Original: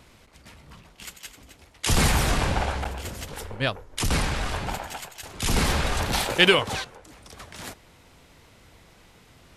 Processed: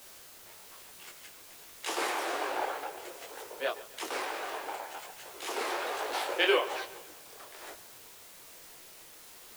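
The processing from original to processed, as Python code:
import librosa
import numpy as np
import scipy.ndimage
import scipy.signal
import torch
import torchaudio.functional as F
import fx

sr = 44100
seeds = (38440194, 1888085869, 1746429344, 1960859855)

y = scipy.signal.sosfilt(scipy.signal.butter(8, 340.0, 'highpass', fs=sr, output='sos'), x)
y = fx.high_shelf(y, sr, hz=2500.0, db=-10.5)
y = fx.quant_dither(y, sr, seeds[0], bits=8, dither='triangular')
y = fx.echo_feedback(y, sr, ms=138, feedback_pct=49, wet_db=-17)
y = fx.detune_double(y, sr, cents=40)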